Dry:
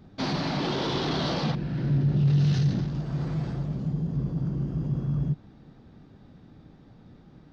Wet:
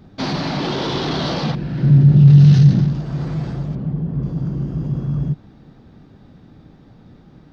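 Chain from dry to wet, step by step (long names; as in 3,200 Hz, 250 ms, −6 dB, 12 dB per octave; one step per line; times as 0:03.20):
0:01.82–0:02.93: parametric band 150 Hz +8 dB 1.1 octaves
0:03.75–0:04.23: low-pass filter 2,500 Hz 12 dB per octave
level +6 dB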